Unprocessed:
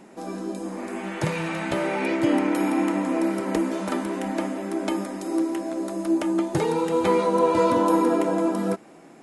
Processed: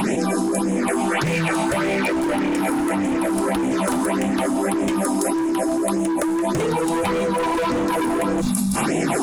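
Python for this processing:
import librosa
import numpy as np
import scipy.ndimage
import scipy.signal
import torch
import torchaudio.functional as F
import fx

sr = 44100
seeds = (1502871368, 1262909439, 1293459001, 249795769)

p1 = fx.peak_eq(x, sr, hz=10000.0, db=8.0, octaves=0.38)
p2 = fx.phaser_stages(p1, sr, stages=6, low_hz=120.0, high_hz=1300.0, hz=1.7, feedback_pct=15)
p3 = fx.rider(p2, sr, range_db=4, speed_s=2.0)
p4 = p2 + F.gain(torch.from_numpy(p3), 1.0).numpy()
p5 = np.clip(p4, -10.0 ** (-20.0 / 20.0), 10.0 ** (-20.0 / 20.0))
p6 = fx.spec_repair(p5, sr, seeds[0], start_s=8.44, length_s=0.35, low_hz=260.0, high_hz=3300.0, source='after')
y = fx.env_flatten(p6, sr, amount_pct=100)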